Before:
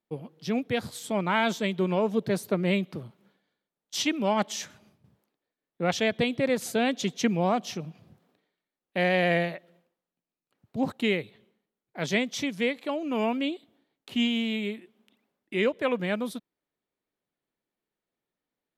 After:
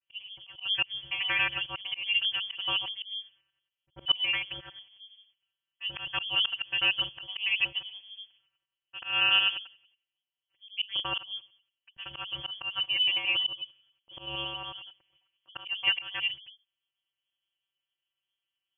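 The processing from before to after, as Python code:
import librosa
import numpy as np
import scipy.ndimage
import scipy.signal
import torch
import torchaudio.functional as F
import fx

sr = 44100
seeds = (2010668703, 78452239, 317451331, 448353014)

y = fx.local_reverse(x, sr, ms=92.0)
y = fx.high_shelf(y, sr, hz=2600.0, db=5.5)
y = fx.vocoder(y, sr, bands=32, carrier='square', carrier_hz=102.0)
y = fx.auto_swell(y, sr, attack_ms=176.0)
y = fx.freq_invert(y, sr, carrier_hz=3300)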